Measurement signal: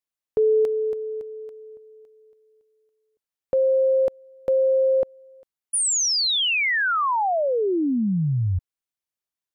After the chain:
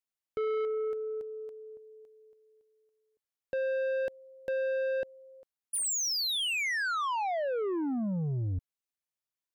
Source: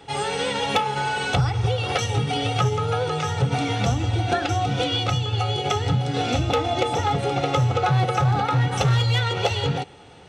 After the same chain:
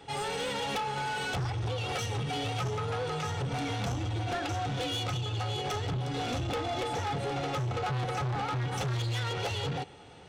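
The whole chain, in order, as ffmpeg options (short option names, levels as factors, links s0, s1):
-af "asoftclip=type=tanh:threshold=0.0596,volume=0.596"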